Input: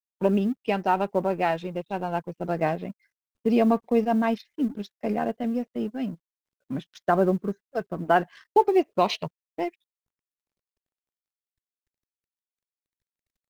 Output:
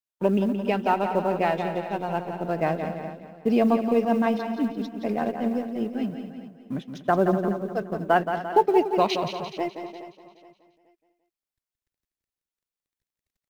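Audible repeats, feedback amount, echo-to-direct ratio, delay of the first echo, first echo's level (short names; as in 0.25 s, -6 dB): 10, no steady repeat, -5.5 dB, 0.173 s, -8.0 dB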